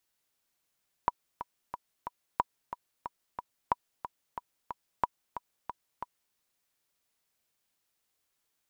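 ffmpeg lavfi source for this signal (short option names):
-f lavfi -i "aevalsrc='pow(10,(-11.5-11.5*gte(mod(t,4*60/182),60/182))/20)*sin(2*PI*974*mod(t,60/182))*exp(-6.91*mod(t,60/182)/0.03)':d=5.27:s=44100"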